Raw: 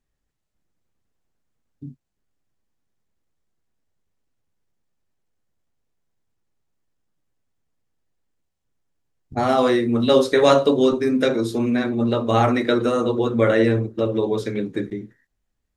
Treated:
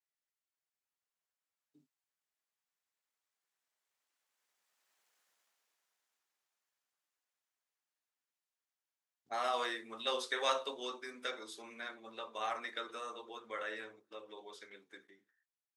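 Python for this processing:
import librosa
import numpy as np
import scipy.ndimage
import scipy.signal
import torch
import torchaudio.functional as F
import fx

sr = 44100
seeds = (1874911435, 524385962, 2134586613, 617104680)

y = fx.doppler_pass(x, sr, speed_mps=14, closest_m=5.7, pass_at_s=5.14)
y = scipy.signal.sosfilt(scipy.signal.butter(2, 1000.0, 'highpass', fs=sr, output='sos'), y)
y = y * librosa.db_to_amplitude(11.0)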